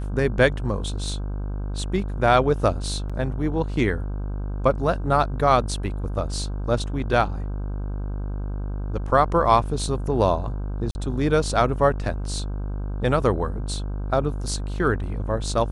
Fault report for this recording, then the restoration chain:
buzz 50 Hz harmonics 32 -28 dBFS
3.09–3.10 s: dropout 6 ms
10.91–10.95 s: dropout 40 ms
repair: de-hum 50 Hz, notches 32; interpolate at 3.09 s, 6 ms; interpolate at 10.91 s, 40 ms

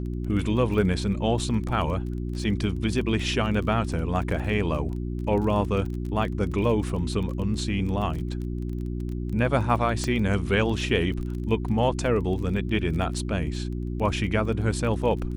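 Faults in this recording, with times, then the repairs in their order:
crackle 22 per s -32 dBFS
hum 60 Hz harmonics 6 -30 dBFS
10.04 s: pop -15 dBFS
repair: de-click; de-hum 60 Hz, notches 6

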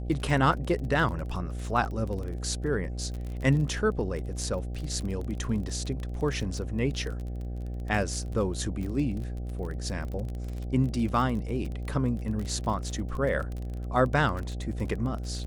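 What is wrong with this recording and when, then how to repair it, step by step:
buzz 60 Hz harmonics 13 -34 dBFS
crackle 27 per s -33 dBFS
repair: de-click; de-hum 60 Hz, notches 13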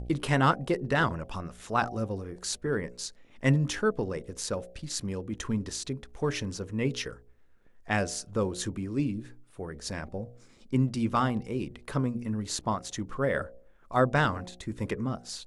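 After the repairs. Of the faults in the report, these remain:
nothing left

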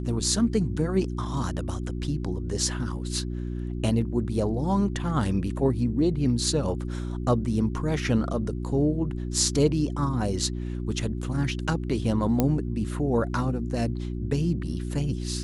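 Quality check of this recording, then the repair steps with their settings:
hum 60 Hz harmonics 6 -31 dBFS
12.40 s: pop -9 dBFS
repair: de-click; de-hum 60 Hz, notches 6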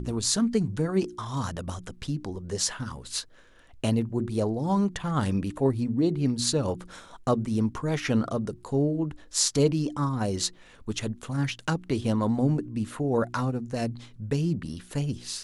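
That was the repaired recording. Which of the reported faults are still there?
12.40 s: pop

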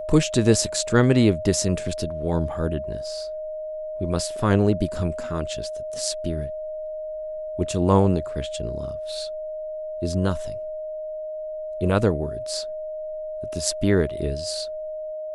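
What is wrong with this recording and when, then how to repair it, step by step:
whine 620 Hz -29 dBFS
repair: band-stop 620 Hz, Q 30

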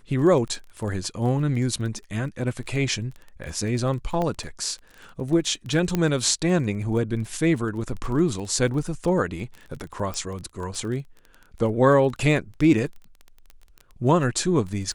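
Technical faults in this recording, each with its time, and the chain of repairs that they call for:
crackle 20 per s -31 dBFS
4.22 s: pop -15 dBFS
5.95 s: pop -10 dBFS
10.14 s: pop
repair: de-click

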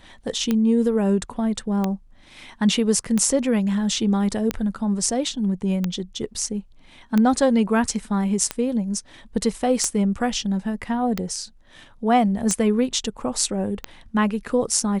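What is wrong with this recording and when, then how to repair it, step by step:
tick 45 rpm -9 dBFS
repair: de-click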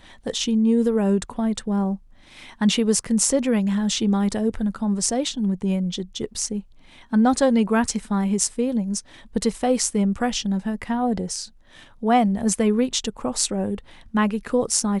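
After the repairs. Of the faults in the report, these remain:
nothing left

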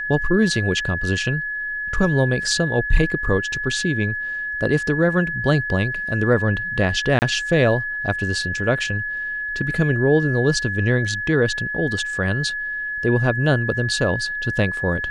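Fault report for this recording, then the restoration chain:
whine 1.7 kHz -24 dBFS
7.19–7.22 s: dropout 29 ms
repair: band-stop 1.7 kHz, Q 30; interpolate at 7.19 s, 29 ms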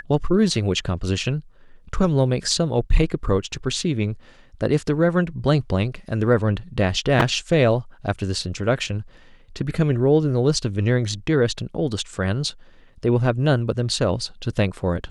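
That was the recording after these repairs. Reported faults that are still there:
nothing left

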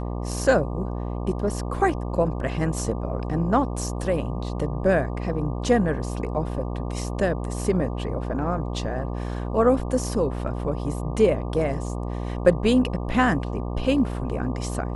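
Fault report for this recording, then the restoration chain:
buzz 60 Hz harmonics 20 -29 dBFS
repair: de-hum 60 Hz, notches 20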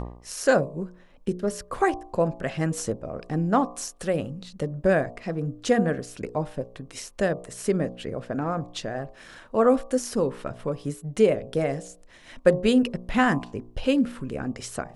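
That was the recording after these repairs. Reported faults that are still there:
nothing left

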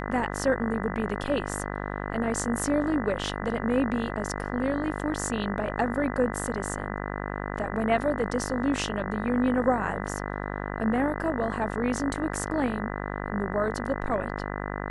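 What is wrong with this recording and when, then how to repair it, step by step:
buzz 50 Hz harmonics 40 -33 dBFS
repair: de-hum 50 Hz, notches 40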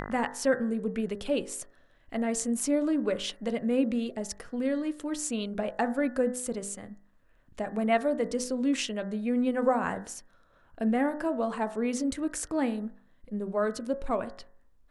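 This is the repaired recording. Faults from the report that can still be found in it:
nothing left

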